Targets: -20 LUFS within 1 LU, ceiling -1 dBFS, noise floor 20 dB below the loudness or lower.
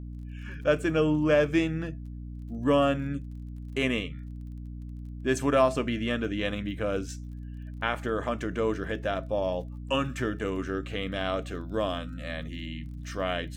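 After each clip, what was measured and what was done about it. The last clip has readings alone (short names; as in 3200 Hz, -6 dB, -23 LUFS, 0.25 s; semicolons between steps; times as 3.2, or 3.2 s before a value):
ticks 33/s; hum 60 Hz; harmonics up to 300 Hz; hum level -36 dBFS; loudness -29.0 LUFS; peak -10.5 dBFS; loudness target -20.0 LUFS
-> de-click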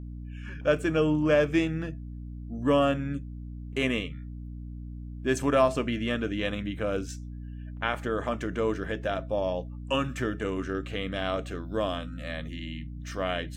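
ticks 0.074/s; hum 60 Hz; harmonics up to 300 Hz; hum level -36 dBFS
-> de-hum 60 Hz, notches 5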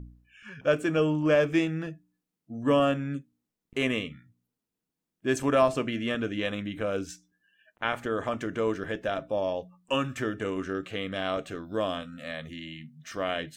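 hum none; loudness -29.0 LUFS; peak -11.0 dBFS; loudness target -20.0 LUFS
-> gain +9 dB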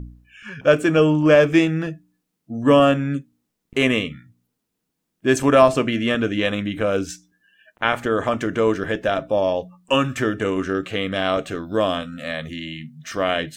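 loudness -20.0 LUFS; peak -2.0 dBFS; noise floor -78 dBFS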